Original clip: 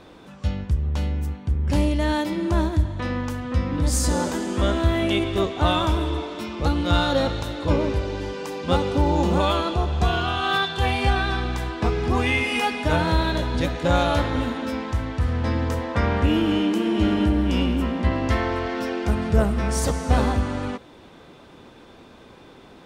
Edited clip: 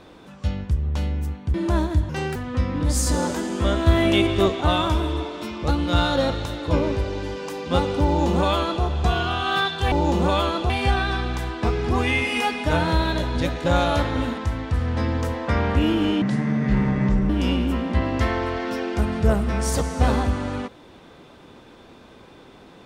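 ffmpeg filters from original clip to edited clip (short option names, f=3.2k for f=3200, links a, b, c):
-filter_complex "[0:a]asplit=11[a][b][c][d][e][f][g][h][i][j][k];[a]atrim=end=1.542[l];[b]atrim=start=2.358:end=2.914[m];[c]atrim=start=2.91:end=3.33,asetpts=PTS-STARTPTS,asetrate=69237,aresample=44100,atrim=end_sample=11797,asetpts=PTS-STARTPTS[n];[d]atrim=start=3.326:end=4.842[o];[e]atrim=start=4.838:end=5.582,asetpts=PTS-STARTPTS,volume=3.5dB[p];[f]atrim=start=5.578:end=10.892[q];[g]atrim=start=9.028:end=9.812[r];[h]atrim=start=10.888:end=14.572[s];[i]atrim=start=14.848:end=16.694[t];[j]atrim=start=16.69:end=17.39,asetpts=PTS-STARTPTS,asetrate=28665,aresample=44100,atrim=end_sample=47492,asetpts=PTS-STARTPTS[u];[k]atrim=start=17.386[v];[l][m]acrossfade=d=0.004:c1=hsin:c2=hsin[w];[w][n]acrossfade=d=0.004:c1=hsin:c2=hsin[x];[x][o]acrossfade=d=0.004:c1=hsin:c2=hsin[y];[y][p]acrossfade=d=0.004:c1=hsin:c2=hsin[z];[z][q]acrossfade=d=0.004:c1=hsin:c2=hsin[aa];[aa][r]acrossfade=d=0.004:c1=hsin:c2=hsin[ab];[ab][s]acrossfade=d=0.004:c1=hsin:c2=hsin[ac];[ac][t]acrossfade=d=0.004:c1=hsin:c2=hsin[ad];[ad][u]acrossfade=d=0.004:c1=hsin:c2=hsin[ae];[ae][v]acrossfade=d=0.004:c1=hsin:c2=hsin"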